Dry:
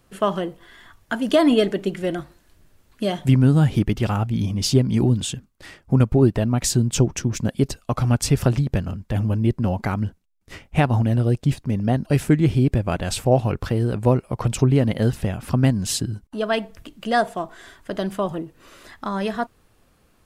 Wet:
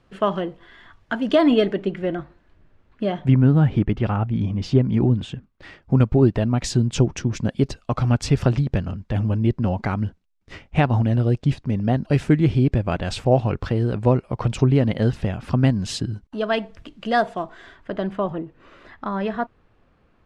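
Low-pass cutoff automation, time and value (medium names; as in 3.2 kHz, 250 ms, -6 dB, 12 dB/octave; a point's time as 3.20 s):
1.56 s 3.8 kHz
2.09 s 2.3 kHz
5.35 s 2.3 kHz
5.95 s 4.8 kHz
17.40 s 4.8 kHz
17.97 s 2.5 kHz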